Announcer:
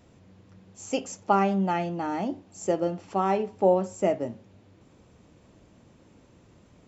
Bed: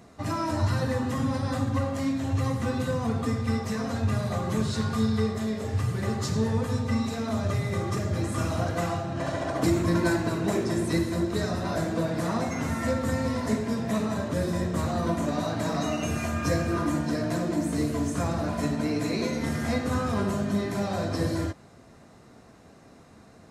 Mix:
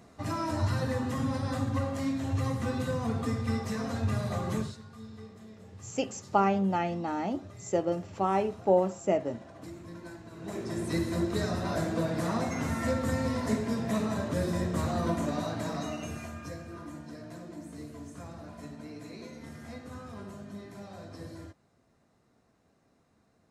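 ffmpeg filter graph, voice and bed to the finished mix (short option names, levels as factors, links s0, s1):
-filter_complex "[0:a]adelay=5050,volume=0.75[s0];[1:a]volume=5.62,afade=t=out:st=4.54:d=0.23:silence=0.133352,afade=t=in:st=10.3:d=0.87:silence=0.11885,afade=t=out:st=15.09:d=1.46:silence=0.199526[s1];[s0][s1]amix=inputs=2:normalize=0"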